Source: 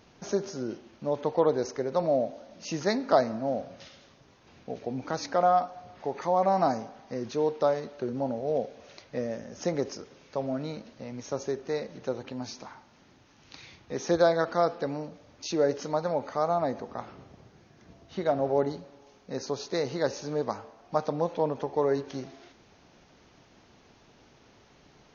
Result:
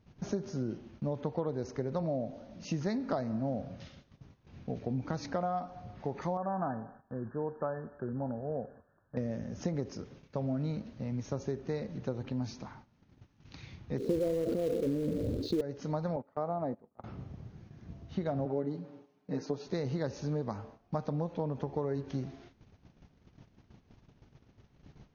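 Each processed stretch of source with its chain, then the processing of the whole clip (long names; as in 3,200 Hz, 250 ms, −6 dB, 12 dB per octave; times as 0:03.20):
0:06.37–0:09.17: linear-phase brick-wall low-pass 1,800 Hz + tilt shelving filter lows −7.5 dB, about 1,100 Hz
0:13.98–0:15.61: drawn EQ curve 170 Hz 0 dB, 270 Hz +8 dB, 480 Hz +14 dB, 930 Hz −22 dB, 1,400 Hz −17 dB, 2,300 Hz −29 dB, 4,100 Hz −2 dB, 5,900 Hz −22 dB, 10,000 Hz −3 dB + floating-point word with a short mantissa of 2 bits + level that may fall only so fast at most 27 dB per second
0:16.16–0:17.04: noise gate −34 dBFS, range −20 dB + resonant band-pass 530 Hz, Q 0.59
0:18.45–0:19.67: Chebyshev high-pass filter 240 Hz + high-shelf EQ 3,700 Hz −8.5 dB + comb filter 6.6 ms, depth 91%
whole clip: bass and treble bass +15 dB, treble −4 dB; downward compressor 6 to 1, threshold −25 dBFS; noise gate −48 dBFS, range −12 dB; level −4.5 dB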